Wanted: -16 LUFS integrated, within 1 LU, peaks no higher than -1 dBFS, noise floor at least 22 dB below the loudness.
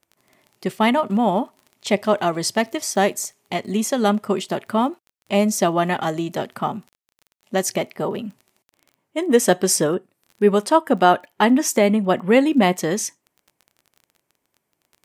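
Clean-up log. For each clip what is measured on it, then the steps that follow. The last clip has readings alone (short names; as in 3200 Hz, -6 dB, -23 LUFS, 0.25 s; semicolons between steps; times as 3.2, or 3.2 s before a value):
ticks 22/s; loudness -20.5 LUFS; peak -1.5 dBFS; loudness target -16.0 LUFS
-> de-click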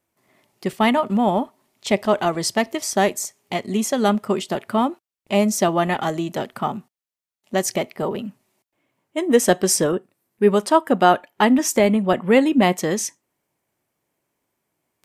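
ticks 0.066/s; loudness -20.5 LUFS; peak -1.5 dBFS; loudness target -16.0 LUFS
-> gain +4.5 dB; limiter -1 dBFS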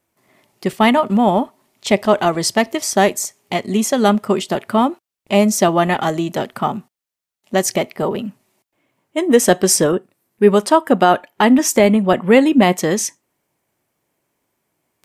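loudness -16.0 LUFS; peak -1.0 dBFS; noise floor -86 dBFS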